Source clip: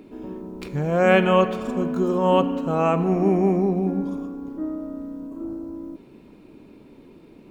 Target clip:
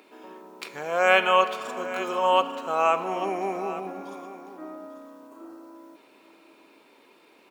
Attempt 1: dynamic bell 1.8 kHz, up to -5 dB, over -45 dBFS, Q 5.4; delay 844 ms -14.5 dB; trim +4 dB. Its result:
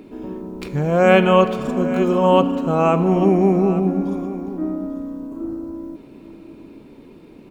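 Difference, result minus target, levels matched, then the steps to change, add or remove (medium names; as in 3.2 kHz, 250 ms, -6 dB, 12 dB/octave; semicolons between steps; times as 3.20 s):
1 kHz band -4.0 dB
add after dynamic bell: high-pass 850 Hz 12 dB/octave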